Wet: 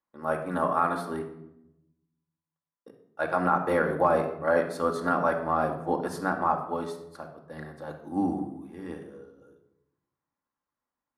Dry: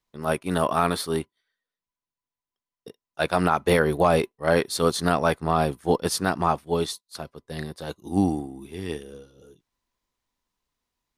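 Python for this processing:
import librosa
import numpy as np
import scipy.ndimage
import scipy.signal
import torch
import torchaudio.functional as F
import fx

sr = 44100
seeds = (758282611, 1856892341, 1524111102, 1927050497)

y = fx.highpass(x, sr, hz=300.0, slope=6)
y = fx.high_shelf_res(y, sr, hz=2100.0, db=-12.0, q=1.5)
y = fx.room_shoebox(y, sr, seeds[0], volume_m3=2400.0, walls='furnished', distance_m=2.3)
y = F.gain(torch.from_numpy(y), -5.0).numpy()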